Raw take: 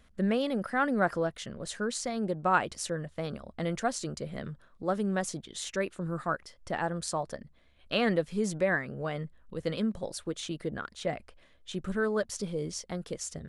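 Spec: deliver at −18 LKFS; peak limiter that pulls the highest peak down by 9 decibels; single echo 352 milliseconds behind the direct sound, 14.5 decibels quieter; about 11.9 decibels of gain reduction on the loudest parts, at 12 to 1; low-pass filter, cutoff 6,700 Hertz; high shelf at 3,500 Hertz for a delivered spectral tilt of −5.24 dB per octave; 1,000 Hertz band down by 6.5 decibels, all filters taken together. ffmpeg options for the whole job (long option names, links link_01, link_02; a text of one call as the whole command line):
ffmpeg -i in.wav -af "lowpass=6700,equalizer=frequency=1000:width_type=o:gain=-9,highshelf=frequency=3500:gain=-7.5,acompressor=threshold=-36dB:ratio=12,alimiter=level_in=8.5dB:limit=-24dB:level=0:latency=1,volume=-8.5dB,aecho=1:1:352:0.188,volume=25.5dB" out.wav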